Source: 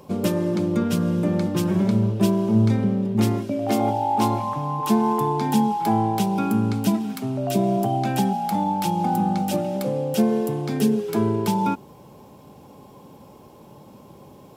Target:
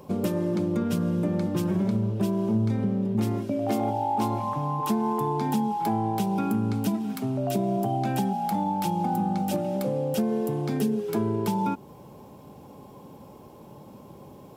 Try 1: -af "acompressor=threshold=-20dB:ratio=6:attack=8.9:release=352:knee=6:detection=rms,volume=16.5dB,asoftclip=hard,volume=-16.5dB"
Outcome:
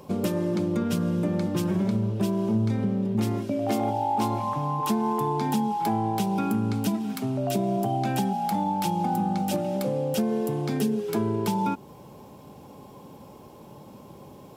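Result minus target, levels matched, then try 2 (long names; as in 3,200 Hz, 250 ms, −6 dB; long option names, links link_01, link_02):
4,000 Hz band +3.0 dB
-af "acompressor=threshold=-20dB:ratio=6:attack=8.9:release=352:knee=6:detection=rms,equalizer=frequency=4500:width=0.34:gain=-3.5,volume=16.5dB,asoftclip=hard,volume=-16.5dB"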